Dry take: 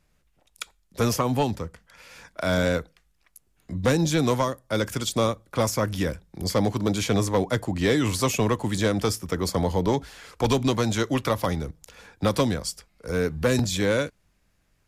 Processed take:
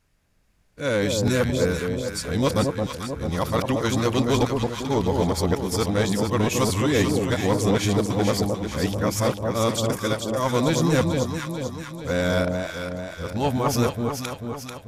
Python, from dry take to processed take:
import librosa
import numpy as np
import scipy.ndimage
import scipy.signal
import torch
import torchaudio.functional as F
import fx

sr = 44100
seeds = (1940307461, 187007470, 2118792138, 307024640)

y = x[::-1].copy()
y = fx.echo_alternate(y, sr, ms=220, hz=970.0, feedback_pct=73, wet_db=-3.0)